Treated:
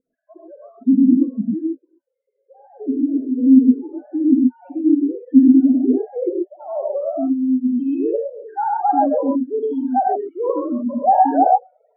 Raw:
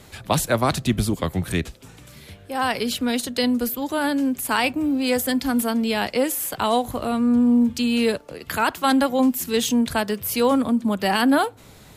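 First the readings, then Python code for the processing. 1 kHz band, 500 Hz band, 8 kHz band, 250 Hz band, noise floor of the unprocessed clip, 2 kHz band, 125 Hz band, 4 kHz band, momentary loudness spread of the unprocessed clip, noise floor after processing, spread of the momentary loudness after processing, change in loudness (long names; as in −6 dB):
+5.5 dB, +1.5 dB, below −40 dB, +5.5 dB, −47 dBFS, below −20 dB, below −10 dB, below −40 dB, 6 LU, −75 dBFS, 12 LU, +4.0 dB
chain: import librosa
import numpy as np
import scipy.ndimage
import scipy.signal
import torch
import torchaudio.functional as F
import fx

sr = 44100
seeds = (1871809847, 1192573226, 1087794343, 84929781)

p1 = fx.sine_speech(x, sr)
p2 = fx.over_compress(p1, sr, threshold_db=-22.0, ratio=-1.0)
p3 = p1 + F.gain(torch.from_numpy(p2), 1.0).numpy()
p4 = fx.spec_topn(p3, sr, count=4)
p5 = fx.filter_sweep_lowpass(p4, sr, from_hz=250.0, to_hz=770.0, start_s=5.21, end_s=7.87, q=5.9)
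p6 = fx.rev_gated(p5, sr, seeds[0], gate_ms=150, shape='rising', drr_db=-1.5)
y = F.gain(torch.from_numpy(p6), -11.0).numpy()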